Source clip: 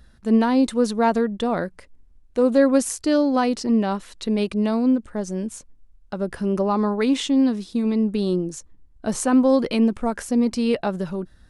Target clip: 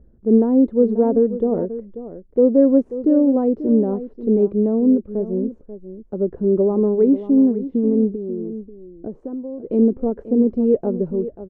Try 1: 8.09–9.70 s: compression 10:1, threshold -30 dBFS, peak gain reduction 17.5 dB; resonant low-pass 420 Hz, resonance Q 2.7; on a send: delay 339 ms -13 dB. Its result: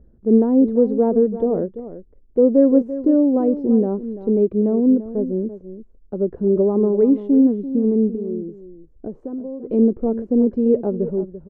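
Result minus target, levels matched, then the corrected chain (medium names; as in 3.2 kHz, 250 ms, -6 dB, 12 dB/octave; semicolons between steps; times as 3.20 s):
echo 199 ms early
8.09–9.70 s: compression 10:1, threshold -30 dBFS, peak gain reduction 17.5 dB; resonant low-pass 420 Hz, resonance Q 2.7; on a send: delay 538 ms -13 dB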